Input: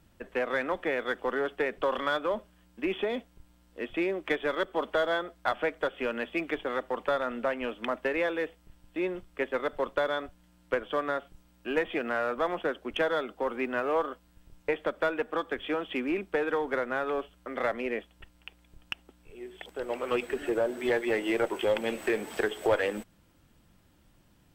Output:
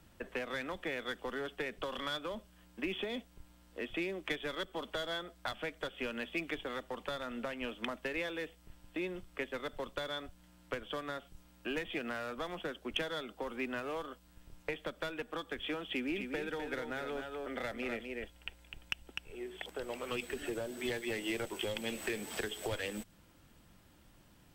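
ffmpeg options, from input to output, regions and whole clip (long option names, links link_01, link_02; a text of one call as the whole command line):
ffmpeg -i in.wav -filter_complex "[0:a]asettb=1/sr,asplit=3[link_01][link_02][link_03];[link_01]atrim=end=15.904[link_04];[link_02]atrim=start=15.9:end=19.41,asetpts=PTS-STARTPTS,afade=type=in:duration=0.004:curve=qsin,afade=type=out:start_time=3.506:duration=0.004:curve=qsin,bandreject=frequency=1100:width=5.8,aecho=1:1:252:0.473,atrim=end_sample=154791[link_05];[link_03]atrim=start=19.406[link_06];[link_04][link_05]acrossfade=duration=0.004:curve1=hsin:curve2=qsin[link_07];[link_07][link_06]acrossfade=duration=0.004:curve1=qsin:curve2=hsin,lowshelf=frequency=450:gain=-3,acrossover=split=210|3000[link_08][link_09][link_10];[link_09]acompressor=threshold=-42dB:ratio=6[link_11];[link_08][link_11][link_10]amix=inputs=3:normalize=0,volume=2.5dB" out.wav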